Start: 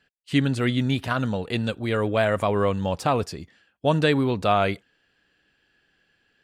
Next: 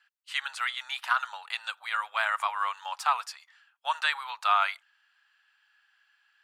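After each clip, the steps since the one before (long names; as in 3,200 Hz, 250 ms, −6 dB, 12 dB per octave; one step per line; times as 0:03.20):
elliptic high-pass filter 860 Hz, stop band 60 dB
parametric band 1,300 Hz +6.5 dB 0.48 octaves
level −1.5 dB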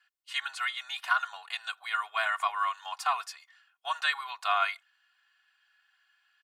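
comb filter 2.8 ms, depth 99%
level −4 dB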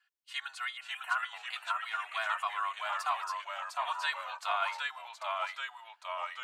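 time-frequency box erased 0:00.77–0:01.28, 3,200–7,500 Hz
delay with pitch and tempo change per echo 525 ms, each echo −1 semitone, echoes 3
level −5.5 dB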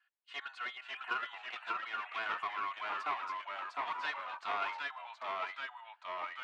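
asymmetric clip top −41 dBFS
band-pass filter 450–2,800 Hz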